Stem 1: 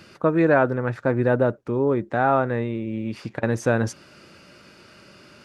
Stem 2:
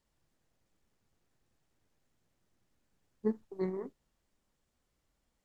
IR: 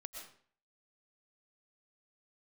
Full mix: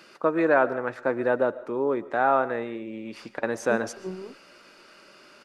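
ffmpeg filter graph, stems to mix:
-filter_complex "[0:a]highpass=320,volume=-4dB,asplit=2[link_01][link_02];[link_02]volume=-7.5dB[link_03];[1:a]lowpass=1000,adelay=450,volume=-0.5dB[link_04];[2:a]atrim=start_sample=2205[link_05];[link_03][link_05]afir=irnorm=-1:irlink=0[link_06];[link_01][link_04][link_06]amix=inputs=3:normalize=0,equalizer=frequency=1100:width=1.5:gain=2"

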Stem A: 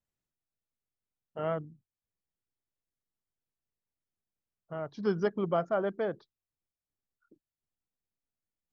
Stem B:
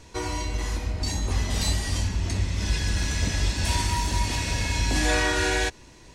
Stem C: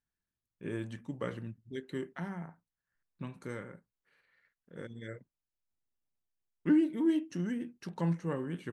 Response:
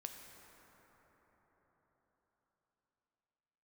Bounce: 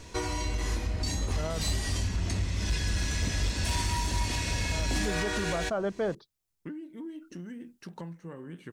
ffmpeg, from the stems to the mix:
-filter_complex "[0:a]bass=frequency=250:gain=4,treble=frequency=4000:gain=7,tremolo=f=0.53:d=0.45,volume=2dB[link_01];[1:a]bandreject=frequency=870:width=13,volume=17.5dB,asoftclip=hard,volume=-17.5dB,volume=-4dB[link_02];[2:a]acompressor=threshold=-38dB:ratio=12,volume=-6dB[link_03];[link_01][link_02][link_03]amix=inputs=3:normalize=0,acontrast=53,alimiter=limit=-21.5dB:level=0:latency=1:release=361"

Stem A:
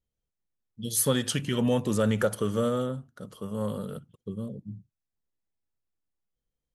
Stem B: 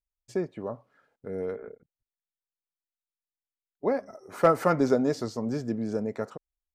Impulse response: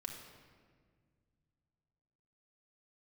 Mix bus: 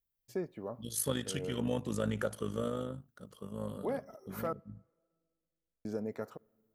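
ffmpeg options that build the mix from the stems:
-filter_complex "[0:a]tremolo=f=52:d=0.667,volume=-6dB,asplit=2[link_01][link_02];[1:a]alimiter=limit=-19dB:level=0:latency=1:release=118,aexciter=amount=6.7:drive=4.6:freq=11000,volume=-7dB,asplit=3[link_03][link_04][link_05];[link_03]atrim=end=4.53,asetpts=PTS-STARTPTS,afade=type=out:start_time=4.526:duration=0.004:curve=hsin[link_06];[link_04]atrim=start=4.53:end=5.85,asetpts=PTS-STARTPTS,volume=0[link_07];[link_05]atrim=start=5.85,asetpts=PTS-STARTPTS,afade=type=in:duration=0.004:curve=hsin[link_08];[link_06][link_07][link_08]concat=n=3:v=0:a=1,asplit=2[link_09][link_10];[link_10]volume=-23.5dB[link_11];[link_02]apad=whole_len=297432[link_12];[link_09][link_12]sidechaincompress=threshold=-39dB:ratio=8:attack=49:release=173[link_13];[2:a]atrim=start_sample=2205[link_14];[link_11][link_14]afir=irnorm=-1:irlink=0[link_15];[link_01][link_13][link_15]amix=inputs=3:normalize=0"

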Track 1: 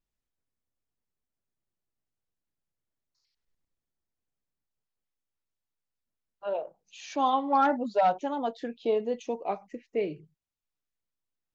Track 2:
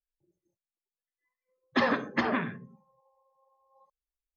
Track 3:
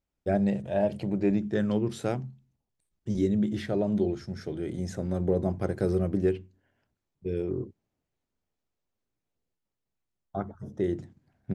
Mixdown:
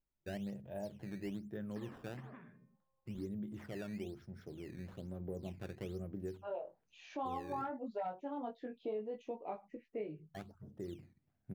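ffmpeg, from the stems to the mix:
ffmpeg -i stem1.wav -i stem2.wav -i stem3.wav -filter_complex "[0:a]flanger=delay=18.5:depth=4.9:speed=0.21,volume=-2.5dB[link_01];[1:a]bandreject=frequency=303.5:width_type=h:width=4,bandreject=frequency=607:width_type=h:width=4,bandreject=frequency=910.5:width_type=h:width=4,bandreject=frequency=1214:width_type=h:width=4,bandreject=frequency=1517.5:width_type=h:width=4,bandreject=frequency=1821:width_type=h:width=4,bandreject=frequency=2124.5:width_type=h:width=4,bandreject=frequency=2428:width_type=h:width=4,bandreject=frequency=2731.5:width_type=h:width=4,bandreject=frequency=3035:width_type=h:width=4,bandreject=frequency=3338.5:width_type=h:width=4,bandreject=frequency=3642:width_type=h:width=4,bandreject=frequency=3945.5:width_type=h:width=4,bandreject=frequency=4249:width_type=h:width=4,bandreject=frequency=4552.5:width_type=h:width=4,bandreject=frequency=4856:width_type=h:width=4,bandreject=frequency=5159.5:width_type=h:width=4,bandreject=frequency=5463:width_type=h:width=4,bandreject=frequency=5766.5:width_type=h:width=4,bandreject=frequency=6070:width_type=h:width=4,bandreject=frequency=6373.5:width_type=h:width=4,bandreject=frequency=6677:width_type=h:width=4,bandreject=frequency=6980.5:width_type=h:width=4,bandreject=frequency=7284:width_type=h:width=4,bandreject=frequency=7587.5:width_type=h:width=4,bandreject=frequency=7891:width_type=h:width=4,bandreject=frequency=8194.5:width_type=h:width=4,bandreject=frequency=8498:width_type=h:width=4,bandreject=frequency=8801.5:width_type=h:width=4,bandreject=frequency=9105:width_type=h:width=4,bandreject=frequency=9408.5:width_type=h:width=4,bandreject=frequency=9712:width_type=h:width=4,bandreject=frequency=10015.5:width_type=h:width=4,bandreject=frequency=10319:width_type=h:width=4,bandreject=frequency=10622.5:width_type=h:width=4,acompressor=threshold=-38dB:ratio=2,volume=-18dB[link_02];[2:a]acrusher=samples=12:mix=1:aa=0.000001:lfo=1:lforange=19.2:lforate=1.1,volume=-14dB[link_03];[link_01][link_02]amix=inputs=2:normalize=0,highshelf=frequency=3200:gain=-9.5,alimiter=level_in=2dB:limit=-24dB:level=0:latency=1:release=331,volume=-2dB,volume=0dB[link_04];[link_03][link_04]amix=inputs=2:normalize=0,bass=frequency=250:gain=2,treble=frequency=4000:gain=-8,acompressor=threshold=-46dB:ratio=1.5" out.wav

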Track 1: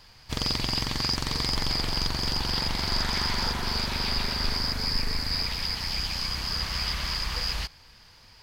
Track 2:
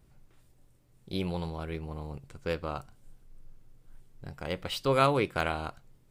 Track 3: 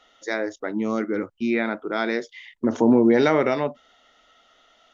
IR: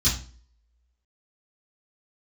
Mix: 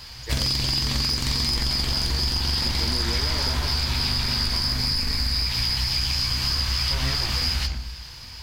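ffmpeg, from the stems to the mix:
-filter_complex "[0:a]aeval=exprs='0.355*(cos(1*acos(clip(val(0)/0.355,-1,1)))-cos(1*PI/2))+0.141*(cos(5*acos(clip(val(0)/0.355,-1,1)))-cos(5*PI/2))':channel_layout=same,volume=-2.5dB,asplit=2[link_01][link_02];[link_02]volume=-20dB[link_03];[1:a]lowpass=1900,aeval=exprs='abs(val(0))':channel_layout=same,adelay=2050,volume=0dB,asplit=2[link_04][link_05];[link_05]volume=-15dB[link_06];[2:a]volume=-10.5dB[link_07];[3:a]atrim=start_sample=2205[link_08];[link_03][link_06]amix=inputs=2:normalize=0[link_09];[link_09][link_08]afir=irnorm=-1:irlink=0[link_10];[link_01][link_04][link_07][link_10]amix=inputs=4:normalize=0,highshelf=frequency=2400:gain=7.5,acompressor=threshold=-21dB:ratio=6"

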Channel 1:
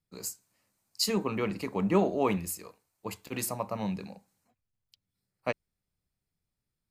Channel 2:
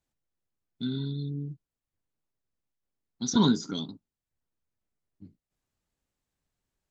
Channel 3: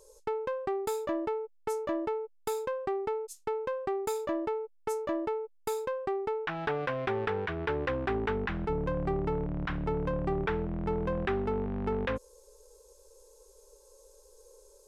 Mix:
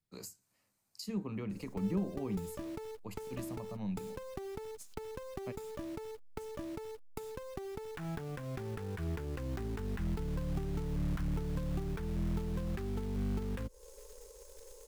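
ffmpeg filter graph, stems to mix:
ffmpeg -i stem1.wav -i stem2.wav -i stem3.wav -filter_complex "[0:a]volume=-3dB[link_01];[2:a]lowshelf=frequency=100:gain=4.5,acompressor=threshold=-32dB:ratio=20,acrusher=bits=2:mode=log:mix=0:aa=0.000001,adelay=1500,volume=2.5dB[link_02];[link_01][link_02]amix=inputs=2:normalize=0,acrossover=split=260[link_03][link_04];[link_04]acompressor=threshold=-46dB:ratio=6[link_05];[link_03][link_05]amix=inputs=2:normalize=0" out.wav

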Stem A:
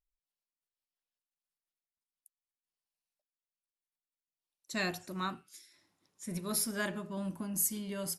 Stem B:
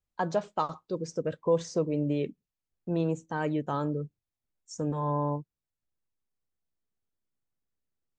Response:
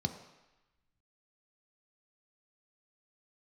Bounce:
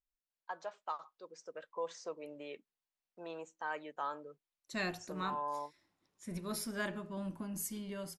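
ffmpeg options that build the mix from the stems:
-filter_complex "[0:a]asubboost=boost=2:cutoff=68,dynaudnorm=framelen=140:gausssize=5:maxgain=4.5dB,highshelf=frequency=6500:gain=-11,volume=-6.5dB[link_01];[1:a]highpass=1000,highshelf=frequency=2800:gain=-10,dynaudnorm=framelen=240:gausssize=11:maxgain=5.5dB,adelay=300,volume=-6dB[link_02];[link_01][link_02]amix=inputs=2:normalize=0"

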